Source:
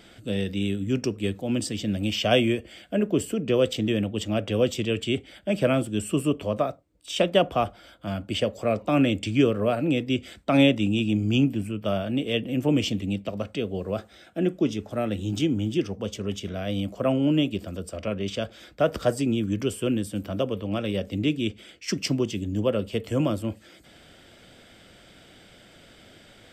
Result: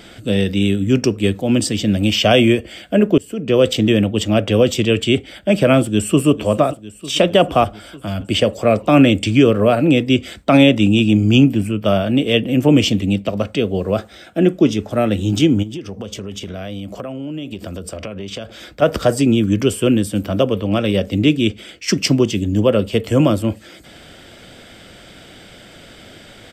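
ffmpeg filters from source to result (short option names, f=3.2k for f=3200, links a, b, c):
-filter_complex "[0:a]asplit=2[a][b];[b]afade=t=in:st=5.82:d=0.01,afade=t=out:st=6.28:d=0.01,aecho=0:1:450|900|1350|1800|2250|2700|3150|3600|4050:0.177828|0.12448|0.0871357|0.060995|0.0426965|0.0298875|0.0209213|0.0146449|0.0102514[c];[a][c]amix=inputs=2:normalize=0,asettb=1/sr,asplit=3[d][e][f];[d]atrim=end=7.644[g];[e]atrim=start=7.64:end=8.21,asetpts=PTS-STARTPTS,afade=t=in:d=0.004:c=qsin,afade=t=out:st=0.566:d=0.004:c=qsin,acrossover=split=120|3000[h][i][j];[i]acompressor=threshold=-33dB:ratio=6:attack=3.2:release=140:knee=2.83:detection=peak[k];[h][k][j]amix=inputs=3:normalize=0[l];[f]atrim=start=8.206[m];[g][l]acrossfade=d=0.004:c1=hsin:c2=qsin[n];[n][m]acrossfade=d=0.004:c1=qsin:c2=hsin,asplit=3[o][p][q];[o]afade=t=out:st=15.62:d=0.02[r];[p]acompressor=threshold=-34dB:ratio=16:attack=3.2:release=140:knee=1:detection=peak,afade=t=in:st=15.62:d=0.02,afade=t=out:st=18.81:d=0.02[s];[q]afade=t=in:st=18.81:d=0.02[t];[r][s][t]amix=inputs=3:normalize=0,asplit=2[u][v];[u]atrim=end=3.18,asetpts=PTS-STARTPTS,afade=t=out:st=3.176:d=0.004:c=hsin:silence=0.0668344[w];[v]atrim=start=3.18,asetpts=PTS-STARTPTS,afade=t=in:d=0.51:silence=0.0668344[x];[w][x]concat=n=2:v=0:a=1,alimiter=level_in=11.5dB:limit=-1dB:release=50:level=0:latency=1,volume=-1dB"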